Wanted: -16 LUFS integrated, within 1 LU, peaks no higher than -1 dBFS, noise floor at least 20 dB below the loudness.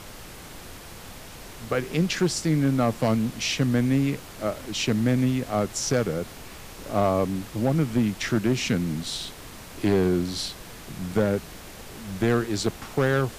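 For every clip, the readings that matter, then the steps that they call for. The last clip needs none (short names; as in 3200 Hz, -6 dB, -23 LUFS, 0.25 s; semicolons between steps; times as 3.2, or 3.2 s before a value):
clipped 0.7%; flat tops at -14.5 dBFS; noise floor -43 dBFS; noise floor target -46 dBFS; loudness -25.5 LUFS; peak -14.5 dBFS; loudness target -16.0 LUFS
-> clip repair -14.5 dBFS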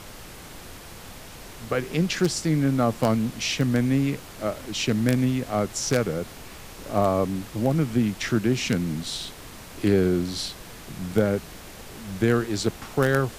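clipped 0.0%; noise floor -43 dBFS; noise floor target -45 dBFS
-> noise print and reduce 6 dB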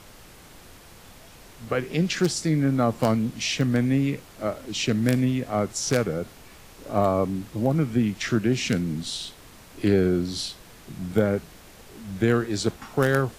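noise floor -48 dBFS; loudness -25.0 LUFS; peak -5.5 dBFS; loudness target -16.0 LUFS
-> gain +9 dB; limiter -1 dBFS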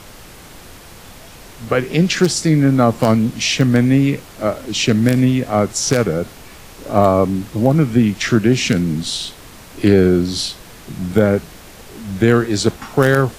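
loudness -16.0 LUFS; peak -1.0 dBFS; noise floor -39 dBFS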